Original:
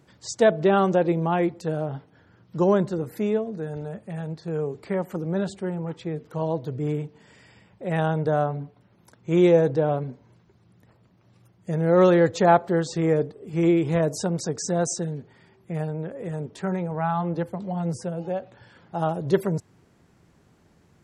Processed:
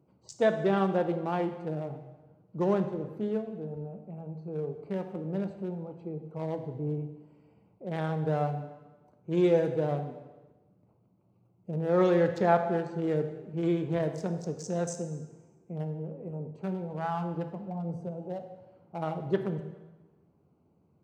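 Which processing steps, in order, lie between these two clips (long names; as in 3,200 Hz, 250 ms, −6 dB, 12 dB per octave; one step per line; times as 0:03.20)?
adaptive Wiener filter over 25 samples
high-pass filter 100 Hz
dense smooth reverb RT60 1.2 s, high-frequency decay 0.9×, DRR 6.5 dB
level −7 dB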